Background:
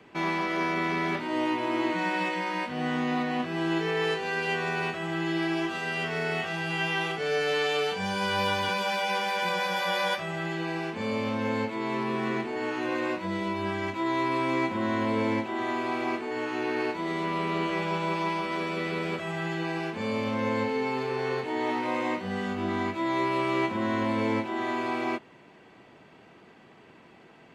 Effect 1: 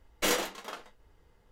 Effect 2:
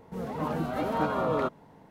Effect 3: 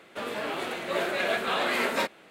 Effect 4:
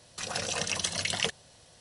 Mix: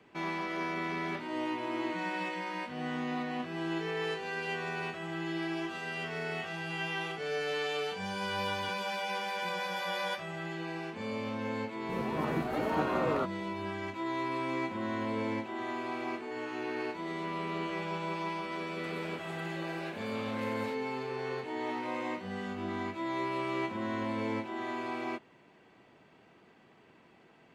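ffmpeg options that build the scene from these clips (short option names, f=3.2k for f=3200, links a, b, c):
-filter_complex "[0:a]volume=-7dB[a];[3:a]acompressor=threshold=-41dB:ratio=6:attack=3.2:release=140:knee=1:detection=peak[b];[2:a]atrim=end=1.9,asetpts=PTS-STARTPTS,volume=-3.5dB,afade=t=in:d=0.004:c=hsin,afade=t=out:st=1.896:d=0.004:c=hsin,adelay=11770[c];[b]atrim=end=2.3,asetpts=PTS-STARTPTS,volume=-3.5dB,afade=t=in:d=0.004:c=hsin,afade=t=out:st=2.296:d=0.004:c=hsin,adelay=18680[d];[a][c][d]amix=inputs=3:normalize=0"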